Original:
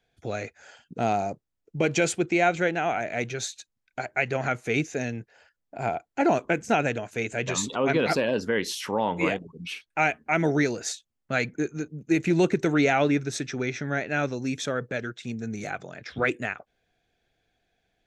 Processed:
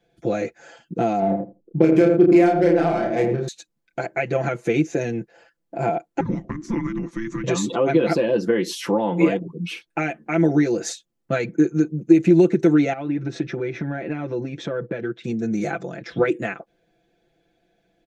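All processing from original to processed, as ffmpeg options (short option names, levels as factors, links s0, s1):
-filter_complex "[0:a]asettb=1/sr,asplit=3[s0][s1][s2];[s0]atrim=end=1.194[s3];[s1]atrim=start=1.19:end=3.48,asetpts=PTS-STARTPTS,afade=t=in:d=0.004:c=qsin,afade=t=out:st=2.286:d=0.004:c=qsin,adynamicsmooth=sensitivity=1.5:basefreq=610,asplit=2[s4][s5];[s5]adelay=31,volume=0.668[s6];[s4][s6]amix=inputs=2:normalize=0,atrim=end_sample=100989,asplit=2[s7][s8];[s8]adelay=81,lowpass=f=880:p=1,volume=0.708,asplit=2[s9][s10];[s10]adelay=81,lowpass=f=880:p=1,volume=0.16,asplit=2[s11][s12];[s12]adelay=81,lowpass=f=880:p=1,volume=0.16[s13];[s7][s9][s11][s13]amix=inputs=4:normalize=0,atrim=end_sample=100989[s14];[s2]atrim=start=3.476[s15];[s3][s14]acrossfade=d=0.004:c1=hsin:c2=qsin[s16];[s16][s15]acrossfade=d=0.004:c1=qsin:c2=hsin,asettb=1/sr,asplit=3[s17][s18][s19];[s17]atrim=end=6.204[s20];[s18]atrim=start=6.2:end=7.44,asetpts=PTS-STARTPTS,afade=t=in:d=0.004:c=qsin,afade=t=out:st=1.236:d=0.004:c=qsin,highshelf=f=6800:g=-10,acompressor=threshold=0.02:ratio=3:attack=3.2:release=140:knee=1:detection=peak,afreqshift=-450[s21];[s19]atrim=start=7.436[s22];[s20][s21]acrossfade=d=0.004:c1=hsin:c2=qsin[s23];[s23][s22]acrossfade=d=0.004:c1=qsin:c2=hsin,asettb=1/sr,asplit=3[s24][s25][s26];[s24]atrim=end=12.934[s27];[s25]atrim=start=12.93:end=15.24,asetpts=PTS-STARTPTS,afade=t=in:d=0.004:c=qsin,afade=t=out:st=2.306:d=0.004:c=qsin,lowpass=3100,acompressor=threshold=0.0316:ratio=12:attack=3.2:release=140:knee=1:detection=peak[s28];[s26]atrim=start=15.236[s29];[s27][s28]acrossfade=d=0.004:c1=hsin:c2=qsin[s30];[s30][s29]acrossfade=d=0.004:c1=qsin:c2=hsin,acompressor=threshold=0.0562:ratio=6,equalizer=f=310:t=o:w=2.3:g=12,aecho=1:1:5.9:0.89,volume=0.891"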